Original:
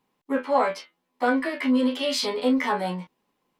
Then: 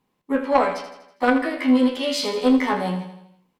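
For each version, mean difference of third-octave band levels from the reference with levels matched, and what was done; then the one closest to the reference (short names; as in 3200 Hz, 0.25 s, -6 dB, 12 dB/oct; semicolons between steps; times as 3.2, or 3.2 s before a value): 3.5 dB: low shelf 180 Hz +8.5 dB; added harmonics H 3 -16 dB, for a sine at -7.5 dBFS; feedback echo 81 ms, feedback 53%, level -10 dB; gain +5.5 dB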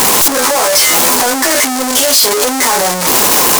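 14.0 dB: infinite clipping; tone controls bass -14 dB, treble +14 dB; sample leveller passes 3; gain +5 dB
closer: first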